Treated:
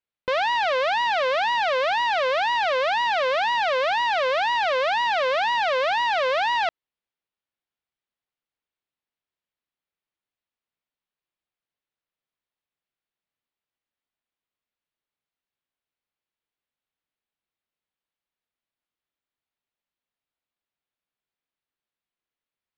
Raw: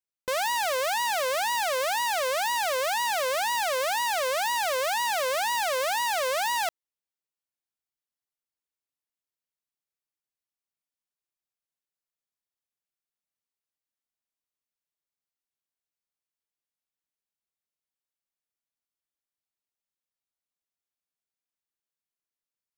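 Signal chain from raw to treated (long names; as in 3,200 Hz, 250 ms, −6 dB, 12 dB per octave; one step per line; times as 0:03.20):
low-pass filter 3,900 Hz 24 dB per octave
level +5 dB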